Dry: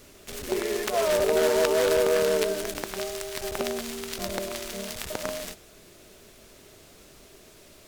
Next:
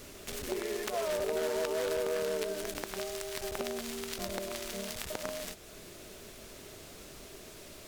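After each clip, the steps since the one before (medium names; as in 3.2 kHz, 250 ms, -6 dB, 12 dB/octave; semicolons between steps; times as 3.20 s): compression 2:1, threshold -43 dBFS, peak gain reduction 13.5 dB; trim +2.5 dB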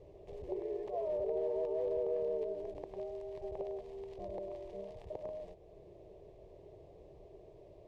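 band-pass filter 490 Hz, Q 0.58; tilt EQ -4 dB/octave; static phaser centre 580 Hz, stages 4; trim -5 dB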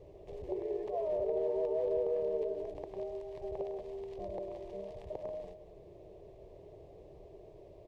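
echo from a far wall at 32 m, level -12 dB; trim +2 dB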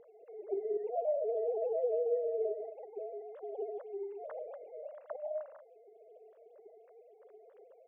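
formants replaced by sine waves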